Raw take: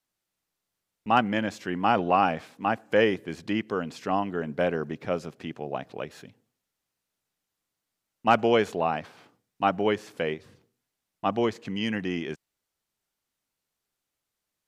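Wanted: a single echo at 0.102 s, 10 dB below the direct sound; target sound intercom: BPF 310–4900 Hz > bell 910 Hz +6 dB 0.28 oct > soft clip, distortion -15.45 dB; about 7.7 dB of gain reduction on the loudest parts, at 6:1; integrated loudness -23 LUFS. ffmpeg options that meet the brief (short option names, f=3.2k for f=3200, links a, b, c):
-af "acompressor=threshold=-24dB:ratio=6,highpass=310,lowpass=4.9k,equalizer=f=910:t=o:w=0.28:g=6,aecho=1:1:102:0.316,asoftclip=threshold=-20dB,volume=10.5dB"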